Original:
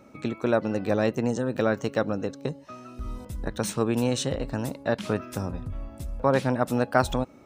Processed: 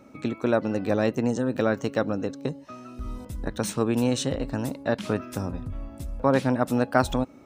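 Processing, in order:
parametric band 270 Hz +4.5 dB 0.3 octaves

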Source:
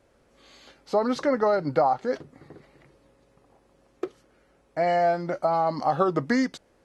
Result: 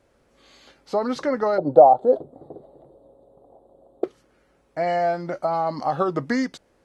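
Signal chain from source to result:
0:01.58–0:04.04: drawn EQ curve 180 Hz 0 dB, 680 Hz +13 dB, 2,300 Hz −30 dB, 3,700 Hz −6 dB, 5,600 Hz −28 dB, 7,900 Hz −8 dB

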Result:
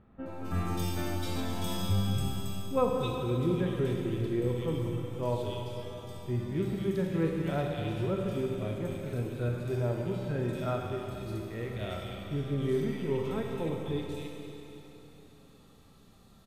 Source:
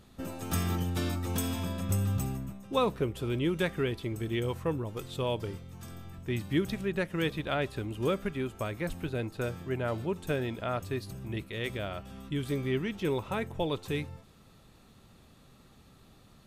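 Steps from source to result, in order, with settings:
harmonic and percussive parts rebalanced percussive −15 dB
multiband delay without the direct sound lows, highs 260 ms, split 2,200 Hz
four-comb reverb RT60 3.4 s, combs from 33 ms, DRR 1 dB
level +1 dB

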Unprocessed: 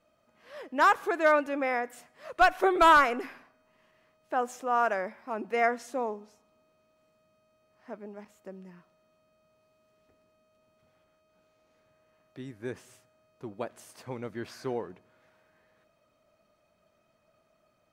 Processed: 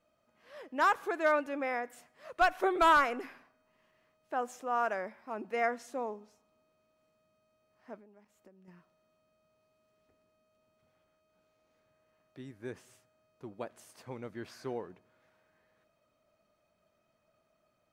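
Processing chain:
0:07.99–0:08.68: downward compressor 8 to 1, threshold −52 dBFS, peak gain reduction 13.5 dB
level −5 dB

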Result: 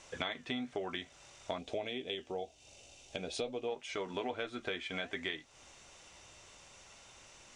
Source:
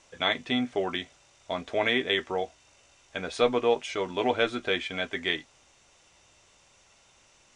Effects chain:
flanger 1.1 Hz, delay 1.5 ms, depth 4.1 ms, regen −87%
downward compressor 6 to 1, threshold −44 dBFS, peak gain reduction 20.5 dB
0:01.58–0:03.68: flat-topped bell 1,400 Hz −11.5 dB 1.3 octaves
level +8 dB

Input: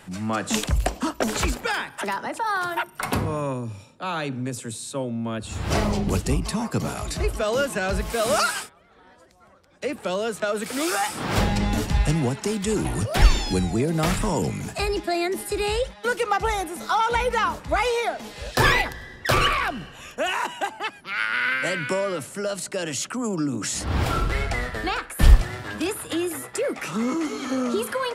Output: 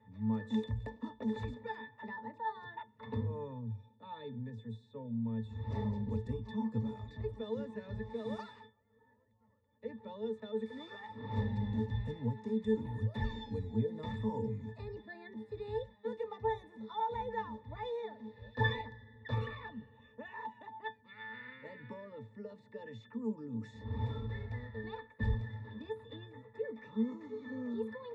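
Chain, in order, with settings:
resonances in every octave A, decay 0.15 s
low-pass that shuts in the quiet parts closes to 2,700 Hz, open at −29 dBFS
level −3.5 dB

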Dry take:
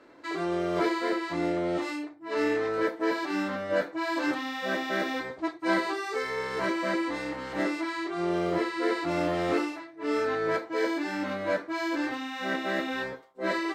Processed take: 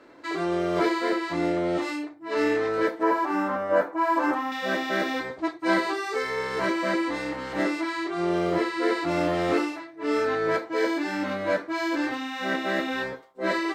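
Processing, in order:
0:03.03–0:04.52: octave-band graphic EQ 125/1,000/2,000/4,000/8,000 Hz −8/+9/−3/−12/−4 dB
level +3 dB

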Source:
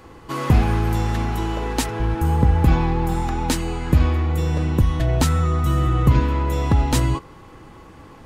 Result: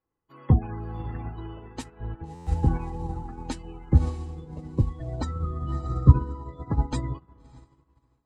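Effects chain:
gate on every frequency bin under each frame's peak −25 dB strong
flanger 0.44 Hz, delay 6.3 ms, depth 5.2 ms, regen −72%
feedback delay with all-pass diffusion 618 ms, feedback 44%, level −10 dB
buffer that repeats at 0:02.34, samples 512, times 10
expander for the loud parts 2.5 to 1, over −42 dBFS
level +6.5 dB

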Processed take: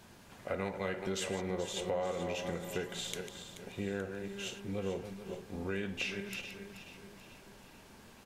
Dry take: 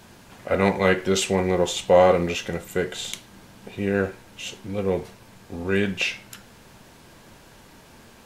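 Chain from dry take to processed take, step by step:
feedback delay that plays each chunk backwards 214 ms, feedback 42%, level −10.5 dB
downward compressor 5 to 1, threshold −25 dBFS, peak gain reduction 13 dB
repeating echo 433 ms, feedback 51%, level −13 dB
level −8 dB

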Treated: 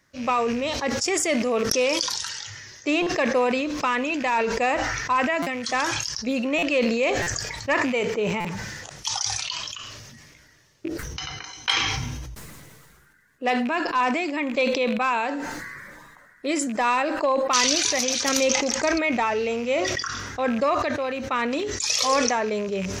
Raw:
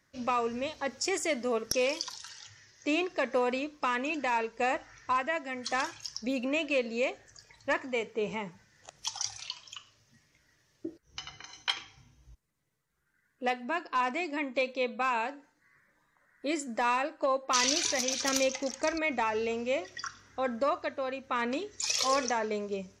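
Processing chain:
loose part that buzzes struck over −46 dBFS, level −37 dBFS
buffer that repeats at 0:03.02/0:05.42/0:06.58/0:07.22/0:08.40, samples 256, times 7
level that may fall only so fast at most 27 dB per second
level +6 dB

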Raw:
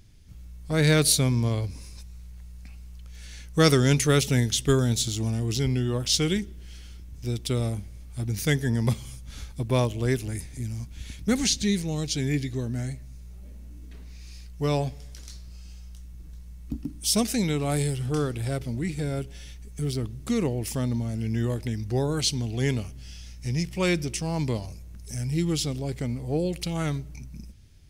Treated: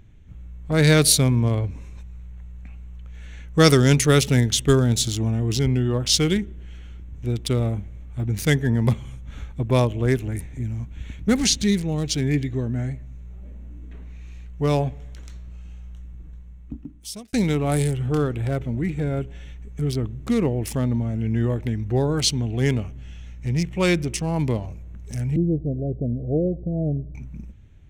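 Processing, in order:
adaptive Wiener filter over 9 samples
0:16.06–0:17.33: fade out
0:25.36–0:27.15: Butterworth low-pass 700 Hz 96 dB per octave
level +4.5 dB

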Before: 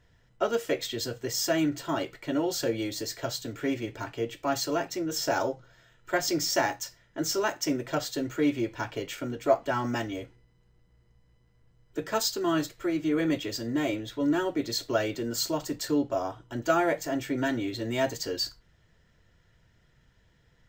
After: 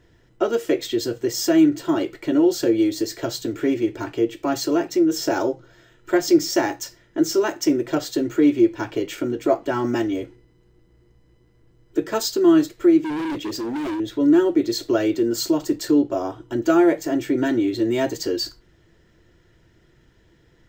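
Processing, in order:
parametric band 340 Hz +14 dB 0.54 octaves
in parallel at −1.5 dB: downward compressor, threshold −30 dBFS, peak gain reduction 18 dB
0:13.01–0:14.00: on the sum: hard clipping −24.5 dBFS, distortion −12 dB

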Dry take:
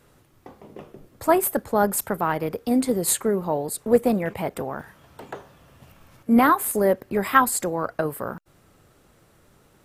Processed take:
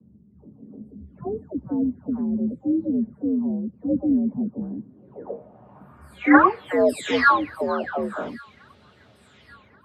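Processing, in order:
every frequency bin delayed by itself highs early, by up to 576 ms
low-shelf EQ 130 Hz +4 dB
frequency shifter +62 Hz
on a send: delay with a high-pass on its return 1,131 ms, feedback 53%, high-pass 1,900 Hz, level −21 dB
on the sum: low-pass filter sweep 220 Hz → 3,800 Hz, 0:04.66–0:06.80
level +1.5 dB

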